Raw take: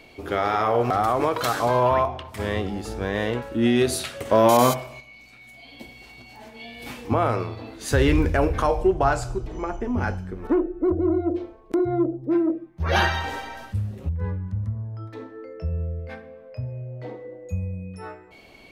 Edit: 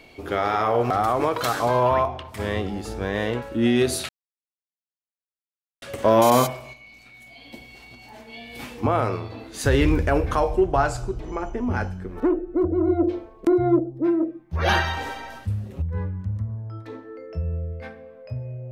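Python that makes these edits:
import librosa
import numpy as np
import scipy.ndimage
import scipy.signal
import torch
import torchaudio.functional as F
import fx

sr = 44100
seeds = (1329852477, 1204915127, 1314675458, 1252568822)

y = fx.edit(x, sr, fx.insert_silence(at_s=4.09, length_s=1.73),
    fx.clip_gain(start_s=11.15, length_s=0.92, db=3.5), tone=tone)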